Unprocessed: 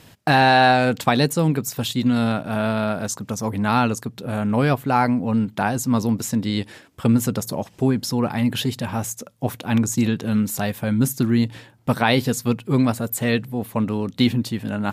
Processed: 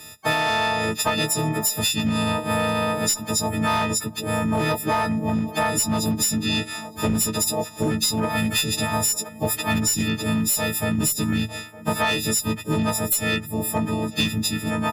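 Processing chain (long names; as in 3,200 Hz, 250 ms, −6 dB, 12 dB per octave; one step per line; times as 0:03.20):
every partial snapped to a pitch grid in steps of 6 semitones
automatic gain control gain up to 5 dB
feedback echo with a band-pass in the loop 910 ms, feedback 42%, band-pass 700 Hz, level −17.5 dB
pitch-shifted copies added −5 semitones −8 dB, −4 semitones −13 dB, +4 semitones −16 dB
asymmetric clip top −10 dBFS
downward compressor, threshold −17 dBFS, peak gain reduction 9 dB
level −2 dB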